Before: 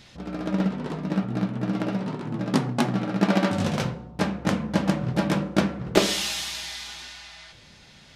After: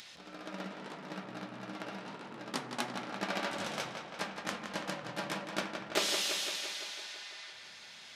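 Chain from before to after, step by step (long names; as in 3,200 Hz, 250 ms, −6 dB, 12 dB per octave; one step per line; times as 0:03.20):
upward compression, threshold −35 dBFS
high-pass filter 1,200 Hz 6 dB per octave
tape delay 169 ms, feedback 72%, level −6 dB, low-pass 5,100 Hz
level −6 dB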